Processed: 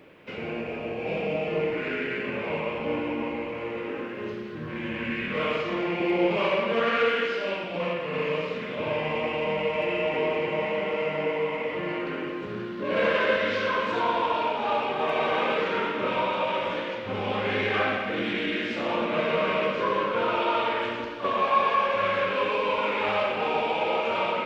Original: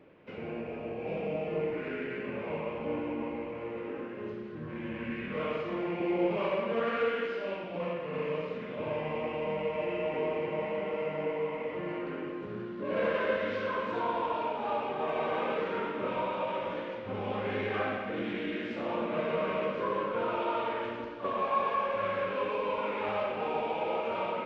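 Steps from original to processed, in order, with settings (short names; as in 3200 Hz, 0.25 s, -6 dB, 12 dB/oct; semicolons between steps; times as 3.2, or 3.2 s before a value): high shelf 2000 Hz +11 dB; gain +4.5 dB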